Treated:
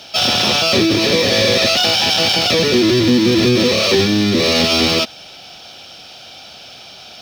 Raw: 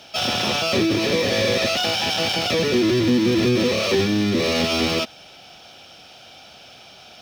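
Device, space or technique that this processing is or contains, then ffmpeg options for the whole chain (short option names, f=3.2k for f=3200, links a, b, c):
presence and air boost: -af "equalizer=f=4.4k:t=o:w=0.81:g=5.5,highshelf=f=11k:g=3,volume=5dB"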